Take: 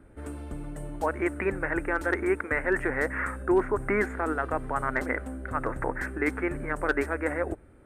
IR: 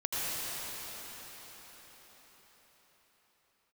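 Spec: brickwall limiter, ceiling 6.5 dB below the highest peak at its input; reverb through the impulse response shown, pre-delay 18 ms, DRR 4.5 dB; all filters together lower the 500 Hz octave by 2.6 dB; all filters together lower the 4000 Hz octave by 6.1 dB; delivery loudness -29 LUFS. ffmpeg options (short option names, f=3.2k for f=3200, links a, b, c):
-filter_complex "[0:a]equalizer=f=500:t=o:g=-3.5,equalizer=f=4k:t=o:g=-8.5,alimiter=limit=-21dB:level=0:latency=1,asplit=2[a][b];[1:a]atrim=start_sample=2205,adelay=18[c];[b][c]afir=irnorm=-1:irlink=0,volume=-13.5dB[d];[a][d]amix=inputs=2:normalize=0,volume=3dB"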